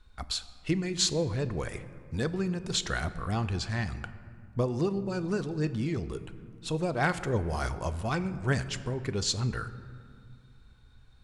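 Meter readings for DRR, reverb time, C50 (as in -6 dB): 11.0 dB, 2.2 s, 13.5 dB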